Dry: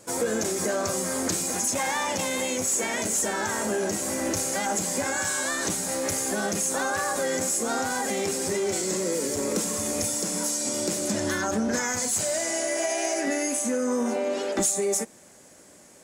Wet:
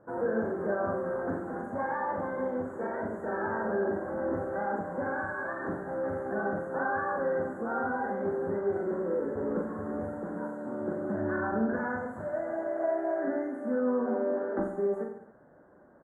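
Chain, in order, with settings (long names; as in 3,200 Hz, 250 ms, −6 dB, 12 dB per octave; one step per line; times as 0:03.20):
elliptic low-pass filter 1,600 Hz, stop band 40 dB
on a send: reverse bouncing-ball delay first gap 40 ms, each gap 1.15×, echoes 5
on the sum: level −4.5 dB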